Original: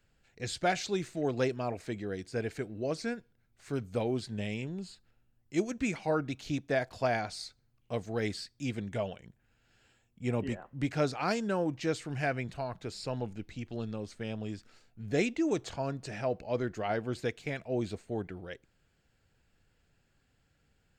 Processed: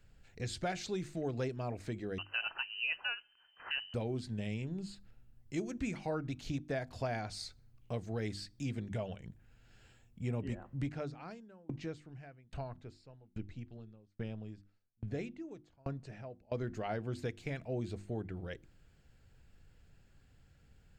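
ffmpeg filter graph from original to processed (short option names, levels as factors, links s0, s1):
-filter_complex "[0:a]asettb=1/sr,asplit=3[s0][s1][s2];[s0]atrim=end=2.184[s3];[s1]atrim=start=2.18:end=3.94,asetpts=PTS-STARTPTS,afade=t=in:d=0.004:c=qsin,afade=t=out:st=1.756:d=0.004:c=qsin,asuperstop=centerf=850:order=4:qfactor=4.1,equalizer=f=1200:w=0.54:g=11.5,lowpass=f=2600:t=q:w=0.5098,lowpass=f=2600:t=q:w=0.6013,lowpass=f=2600:t=q:w=0.9,lowpass=f=2600:t=q:w=2.563,afreqshift=-3100[s4];[s2]atrim=start=3.936[s5];[s3][s4]acrossfade=d=0.004:c1=hsin:c2=qsin[s6];[s6][s5]acrossfade=d=0.004:c1=qsin:c2=hsin,asettb=1/sr,asplit=3[s7][s8][s9];[s7]atrim=end=10.864[s10];[s8]atrim=start=10.86:end=16.52,asetpts=PTS-STARTPTS,afade=t=in:d=0.004:c=qsin,afade=t=out:st=5.656:d=0.004:c=qsin,aemphasis=mode=reproduction:type=cd,aeval=exprs='val(0)*pow(10,-37*if(lt(mod(1.2*n/s,1),2*abs(1.2)/1000),1-mod(1.2*n/s,1)/(2*abs(1.2)/1000),(mod(1.2*n/s,1)-2*abs(1.2)/1000)/(1-2*abs(1.2)/1000))/20)':c=same[s11];[s9]atrim=start=16.516[s12];[s10][s11]acrossfade=d=0.004:c1=hsin:c2=qsin[s13];[s13][s12]acrossfade=d=0.004:c1=qsin:c2=hsin,lowshelf=f=180:g=10.5,bandreject=f=50:t=h:w=6,bandreject=f=100:t=h:w=6,bandreject=f=150:t=h:w=6,bandreject=f=200:t=h:w=6,bandreject=f=250:t=h:w=6,bandreject=f=300:t=h:w=6,bandreject=f=350:t=h:w=6,acompressor=threshold=0.00708:ratio=2,volume=1.19"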